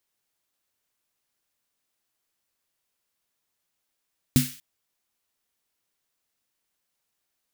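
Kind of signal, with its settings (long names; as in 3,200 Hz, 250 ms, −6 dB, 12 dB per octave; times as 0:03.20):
synth snare length 0.24 s, tones 140 Hz, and 250 Hz, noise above 1,700 Hz, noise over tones −9 dB, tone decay 0.23 s, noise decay 0.48 s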